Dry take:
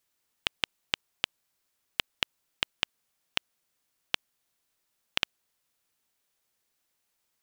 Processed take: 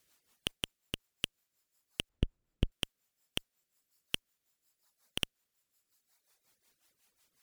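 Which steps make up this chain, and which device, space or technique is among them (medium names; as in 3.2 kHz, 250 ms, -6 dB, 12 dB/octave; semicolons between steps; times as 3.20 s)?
overdriven rotary cabinet (valve stage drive 30 dB, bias 0.6; rotary cabinet horn 5.5 Hz); reverb removal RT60 1.5 s; 2.09–2.72 s: tilt EQ -4.5 dB/octave; trim +13.5 dB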